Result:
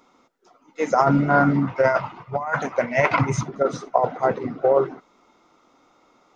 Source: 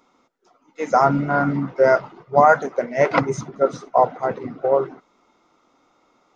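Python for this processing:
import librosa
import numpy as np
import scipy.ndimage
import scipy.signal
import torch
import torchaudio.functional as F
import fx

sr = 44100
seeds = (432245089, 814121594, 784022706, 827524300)

y = fx.graphic_eq_15(x, sr, hz=(100, 400, 1000, 2500), db=(10, -9, 7, 8), at=(1.67, 3.43))
y = fx.over_compress(y, sr, threshold_db=-16.0, ratio=-0.5)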